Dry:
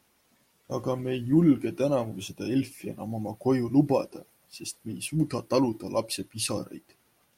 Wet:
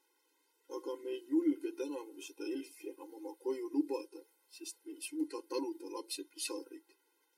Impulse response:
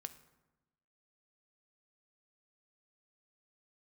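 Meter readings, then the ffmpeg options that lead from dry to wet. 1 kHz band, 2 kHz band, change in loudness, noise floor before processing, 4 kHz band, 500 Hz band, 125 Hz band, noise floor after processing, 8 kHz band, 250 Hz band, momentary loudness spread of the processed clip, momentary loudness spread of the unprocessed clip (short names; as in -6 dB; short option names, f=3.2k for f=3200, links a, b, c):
-14.0 dB, -10.5 dB, -12.0 dB, -68 dBFS, -9.5 dB, -11.5 dB, under -40 dB, -77 dBFS, -9.0 dB, -11.5 dB, 13 LU, 14 LU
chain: -filter_complex "[0:a]acrossover=split=320|3000[a][b][c];[b]acompressor=threshold=-37dB:ratio=2[d];[a][d][c]amix=inputs=3:normalize=0,afftfilt=real='re*eq(mod(floor(b*sr/1024/270),2),1)':imag='im*eq(mod(floor(b*sr/1024/270),2),1)':win_size=1024:overlap=0.75,volume=-5.5dB"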